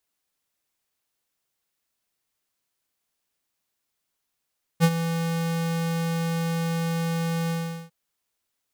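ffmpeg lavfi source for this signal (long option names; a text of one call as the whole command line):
ffmpeg -f lavfi -i "aevalsrc='0.178*(2*lt(mod(166*t,1),0.5)-1)':duration=3.101:sample_rate=44100,afade=type=in:duration=0.039,afade=type=out:start_time=0.039:duration=0.057:silence=0.282,afade=type=out:start_time=2.7:duration=0.401" out.wav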